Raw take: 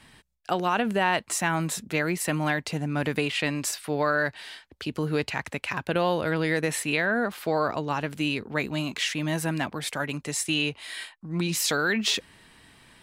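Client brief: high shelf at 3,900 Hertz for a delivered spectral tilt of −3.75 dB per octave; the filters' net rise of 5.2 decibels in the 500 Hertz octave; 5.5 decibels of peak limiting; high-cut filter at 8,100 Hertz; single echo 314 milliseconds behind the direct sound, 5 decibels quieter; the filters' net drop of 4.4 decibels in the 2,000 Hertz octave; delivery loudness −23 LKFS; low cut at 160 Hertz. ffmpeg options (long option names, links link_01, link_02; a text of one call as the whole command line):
ffmpeg -i in.wav -af "highpass=160,lowpass=8100,equalizer=frequency=500:width_type=o:gain=6.5,equalizer=frequency=2000:width_type=o:gain=-7.5,highshelf=frequency=3900:gain=4.5,alimiter=limit=-16dB:level=0:latency=1,aecho=1:1:314:0.562,volume=4dB" out.wav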